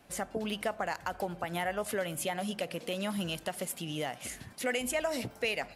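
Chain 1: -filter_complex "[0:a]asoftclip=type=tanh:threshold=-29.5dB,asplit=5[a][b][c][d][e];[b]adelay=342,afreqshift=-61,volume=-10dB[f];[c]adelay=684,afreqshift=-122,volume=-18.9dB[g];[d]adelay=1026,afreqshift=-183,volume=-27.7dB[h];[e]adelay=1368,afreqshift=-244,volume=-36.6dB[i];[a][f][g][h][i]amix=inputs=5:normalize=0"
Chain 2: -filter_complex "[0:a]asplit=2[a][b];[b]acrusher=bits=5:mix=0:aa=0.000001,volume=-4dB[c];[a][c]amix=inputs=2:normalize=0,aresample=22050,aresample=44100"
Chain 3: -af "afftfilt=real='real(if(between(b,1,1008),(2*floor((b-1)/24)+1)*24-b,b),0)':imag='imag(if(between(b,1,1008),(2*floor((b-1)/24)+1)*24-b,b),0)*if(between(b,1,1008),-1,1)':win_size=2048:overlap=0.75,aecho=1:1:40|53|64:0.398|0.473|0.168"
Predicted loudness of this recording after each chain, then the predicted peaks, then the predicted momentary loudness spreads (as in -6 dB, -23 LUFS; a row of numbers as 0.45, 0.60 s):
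-37.0, -30.5, -33.5 LUFS; -25.5, -14.0, -19.0 dBFS; 4, 5, 5 LU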